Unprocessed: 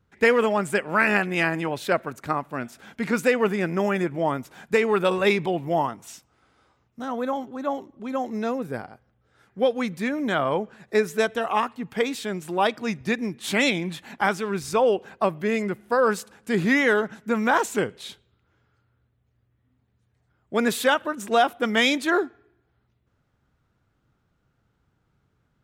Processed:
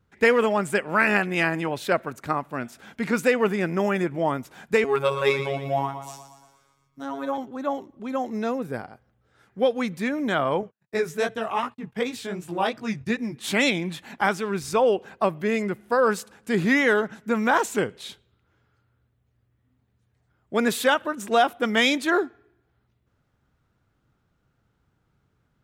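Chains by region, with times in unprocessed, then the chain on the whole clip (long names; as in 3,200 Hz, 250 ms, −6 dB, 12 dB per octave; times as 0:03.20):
0:04.84–0:07.38: phases set to zero 138 Hz + repeating echo 117 ms, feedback 56%, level −10 dB
0:10.61–0:13.36: noise gate −43 dBFS, range −43 dB + parametric band 110 Hz +8.5 dB 0.89 octaves + chorus effect 2.7 Hz, delay 15.5 ms, depth 6.2 ms
whole clip: no processing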